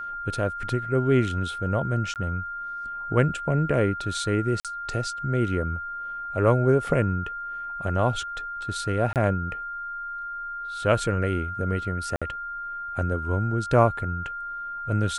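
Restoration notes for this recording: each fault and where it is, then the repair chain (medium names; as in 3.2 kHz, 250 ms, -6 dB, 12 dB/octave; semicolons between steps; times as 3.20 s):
whine 1.4 kHz -31 dBFS
2.14–2.16 s: dropout 18 ms
4.60–4.65 s: dropout 47 ms
9.13–9.16 s: dropout 28 ms
12.16–12.22 s: dropout 56 ms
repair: band-stop 1.4 kHz, Q 30; interpolate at 2.14 s, 18 ms; interpolate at 4.60 s, 47 ms; interpolate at 9.13 s, 28 ms; interpolate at 12.16 s, 56 ms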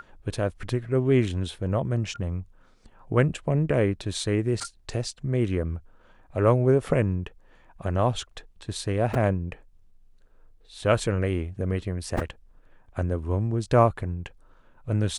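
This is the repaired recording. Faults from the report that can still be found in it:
nothing left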